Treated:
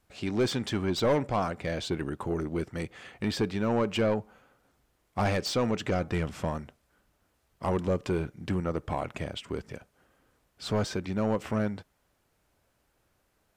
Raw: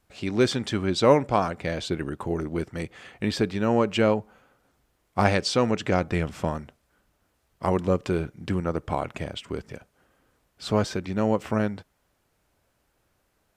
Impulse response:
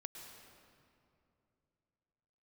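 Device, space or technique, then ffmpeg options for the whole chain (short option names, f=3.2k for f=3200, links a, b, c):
saturation between pre-emphasis and de-emphasis: -af "highshelf=f=2.3k:g=10.5,asoftclip=type=tanh:threshold=-17.5dB,highshelf=f=2.3k:g=-10.5,volume=-1.5dB"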